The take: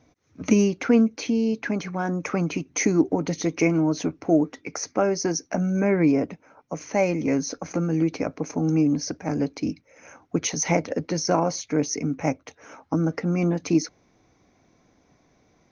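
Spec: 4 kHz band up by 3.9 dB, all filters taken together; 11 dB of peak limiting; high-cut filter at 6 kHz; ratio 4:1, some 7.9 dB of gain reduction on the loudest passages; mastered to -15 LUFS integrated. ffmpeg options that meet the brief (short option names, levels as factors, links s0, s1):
-af "lowpass=6000,equalizer=f=4000:t=o:g=7.5,acompressor=threshold=0.0708:ratio=4,volume=7.08,alimiter=limit=0.531:level=0:latency=1"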